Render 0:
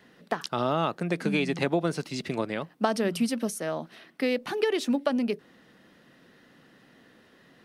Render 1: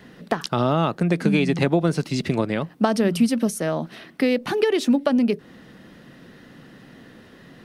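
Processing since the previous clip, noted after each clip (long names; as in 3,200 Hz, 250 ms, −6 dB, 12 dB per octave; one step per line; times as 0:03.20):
low-shelf EQ 220 Hz +10 dB
in parallel at +1.5 dB: downward compressor, threshold −31 dBFS, peak gain reduction 13.5 dB
on the sum: level +1 dB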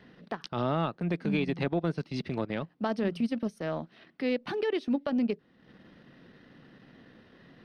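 transient designer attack −6 dB, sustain −10 dB
Savitzky-Golay smoothing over 15 samples
level −7.5 dB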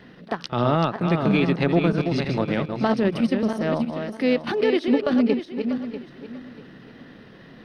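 feedback delay that plays each chunk backwards 321 ms, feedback 48%, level −6 dB
echo ahead of the sound 32 ms −19.5 dB
level +8 dB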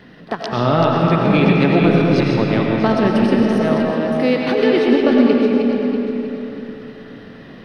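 convolution reverb RT60 3.1 s, pre-delay 60 ms, DRR −1 dB
level +3.5 dB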